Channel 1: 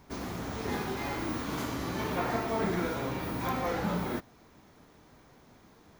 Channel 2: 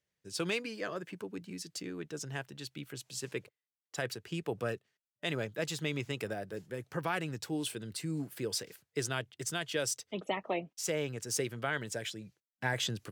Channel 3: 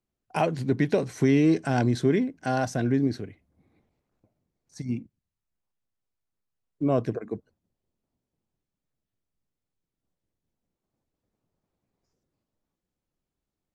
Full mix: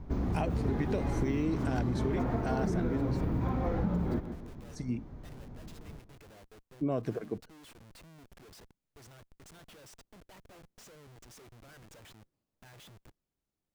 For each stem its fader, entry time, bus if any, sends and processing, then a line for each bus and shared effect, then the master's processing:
−1.0 dB, 0.00 s, no send, echo send −14 dB, spectral tilt −4.5 dB per octave
−16.0 dB, 0.00 s, no send, no echo send, comparator with hysteresis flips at −42 dBFS
−3.5 dB, 0.00 s, no send, no echo send, no processing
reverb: not used
echo: repeating echo 154 ms, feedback 34%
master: downward compressor 6 to 1, threshold −27 dBFS, peak gain reduction 9.5 dB

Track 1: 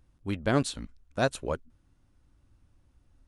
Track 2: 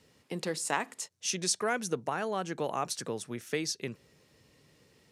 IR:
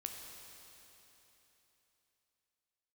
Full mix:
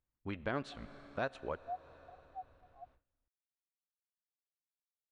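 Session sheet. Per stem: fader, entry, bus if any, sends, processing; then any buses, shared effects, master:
+2.0 dB, 0.00 s, send −12 dB, low-pass filter 2,400 Hz 12 dB per octave; low-shelf EQ 480 Hz −10 dB
0.0 dB, 0.00 s, no send, formant resonators in series a; every bin expanded away from the loudest bin 4 to 1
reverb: on, RT60 3.5 s, pre-delay 11 ms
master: noise gate with hold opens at −54 dBFS; downward compressor 2 to 1, threshold −41 dBFS, peak gain reduction 11 dB

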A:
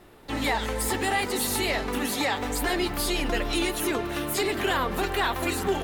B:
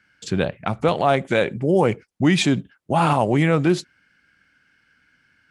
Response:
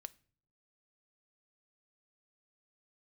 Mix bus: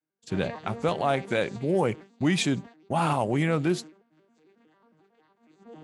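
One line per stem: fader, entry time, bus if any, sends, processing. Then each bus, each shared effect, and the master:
−3.0 dB, 0.00 s, no send, vocoder with an arpeggio as carrier major triad, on D#3, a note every 91 ms; brickwall limiter −24 dBFS, peak gain reduction 9 dB; automatic ducking −12 dB, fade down 2.00 s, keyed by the second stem
−7.0 dB, 0.00 s, no send, no processing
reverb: not used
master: downward expander −35 dBFS; high-shelf EQ 8,400 Hz +7.5 dB

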